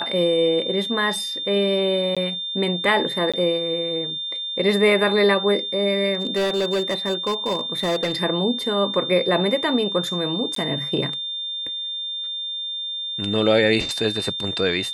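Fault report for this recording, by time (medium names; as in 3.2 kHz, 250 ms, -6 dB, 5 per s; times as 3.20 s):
whine 3.6 kHz -26 dBFS
2.15–2.17 s: dropout 16 ms
3.32–3.34 s: dropout 16 ms
6.14–8.22 s: clipped -18 dBFS
10.55–10.56 s: dropout 13 ms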